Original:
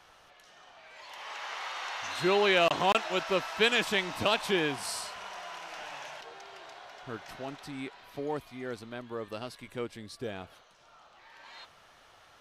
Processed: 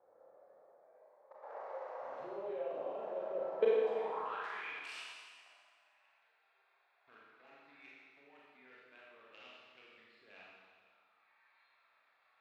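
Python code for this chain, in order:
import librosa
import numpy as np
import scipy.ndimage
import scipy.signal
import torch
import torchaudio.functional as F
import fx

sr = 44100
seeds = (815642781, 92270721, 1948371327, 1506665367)

y = fx.wiener(x, sr, points=15)
y = fx.level_steps(y, sr, step_db=22)
y = fx.filter_sweep_bandpass(y, sr, from_hz=520.0, to_hz=2700.0, start_s=3.7, end_s=4.77, q=6.0)
y = fx.rev_schroeder(y, sr, rt60_s=1.7, comb_ms=28, drr_db=-6.0)
y = y * 10.0 ** (6.5 / 20.0)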